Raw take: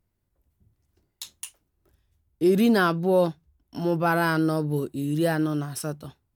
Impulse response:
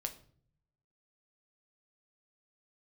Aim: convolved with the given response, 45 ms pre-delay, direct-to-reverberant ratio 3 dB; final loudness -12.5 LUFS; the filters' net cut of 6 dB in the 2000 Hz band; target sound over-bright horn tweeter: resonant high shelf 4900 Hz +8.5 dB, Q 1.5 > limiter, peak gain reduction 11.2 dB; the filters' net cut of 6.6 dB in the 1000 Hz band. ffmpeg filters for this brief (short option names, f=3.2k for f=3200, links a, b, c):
-filter_complex "[0:a]equalizer=f=1k:t=o:g=-8,equalizer=f=2k:t=o:g=-3.5,asplit=2[a][b];[1:a]atrim=start_sample=2205,adelay=45[c];[b][c]afir=irnorm=-1:irlink=0,volume=-2.5dB[d];[a][d]amix=inputs=2:normalize=0,highshelf=f=4.9k:t=q:w=1.5:g=8.5,volume=17dB,alimiter=limit=-2.5dB:level=0:latency=1"